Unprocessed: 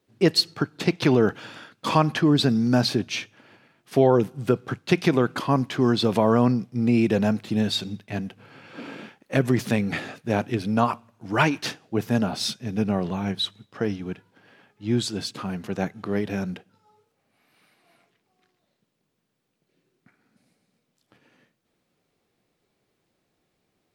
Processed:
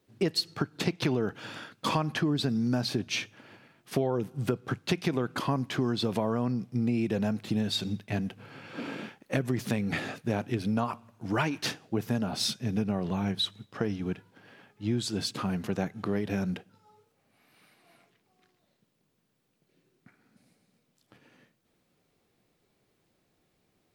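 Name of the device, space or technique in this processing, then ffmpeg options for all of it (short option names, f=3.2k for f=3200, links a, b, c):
ASMR close-microphone chain: -af "lowshelf=f=180:g=3.5,acompressor=threshold=-26dB:ratio=4,highshelf=f=10k:g=3.5"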